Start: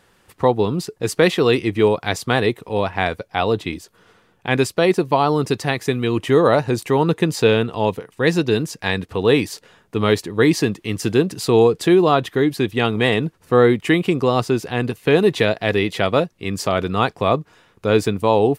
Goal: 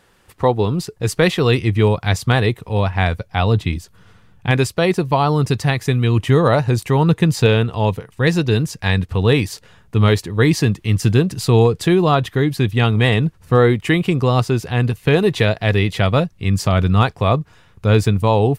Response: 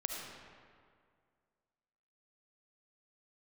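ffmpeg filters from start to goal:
-af "asubboost=boost=11:cutoff=130,volume=1.12"

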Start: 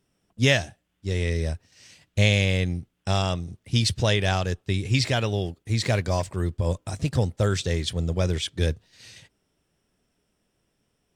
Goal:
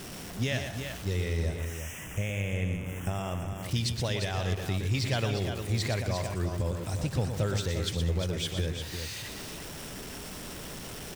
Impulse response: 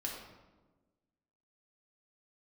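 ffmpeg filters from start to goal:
-filter_complex "[0:a]aeval=exprs='val(0)+0.5*0.0251*sgn(val(0))':c=same,alimiter=limit=0.15:level=0:latency=1:release=336,asettb=1/sr,asplit=3[s0][s1][s2];[s0]atrim=end=1.454[s3];[s1]atrim=start=1.45:end=3.63,asetpts=PTS-STARTPTS,afade=t=in:d=0.004:c=qsin,afade=t=out:st=2.176:d=0.004:c=qsin,asuperstop=centerf=4300:order=4:qfactor=1.3[s4];[s2]atrim=start=3.626[s5];[s3][s4]acrossfade=d=0.004:c1=hsin:c2=qsin[s6];[s6][s5]acrossfade=d=0.004:c1=qsin:c2=hsin,aecho=1:1:119|194|351:0.422|0.126|0.422,volume=0.631"

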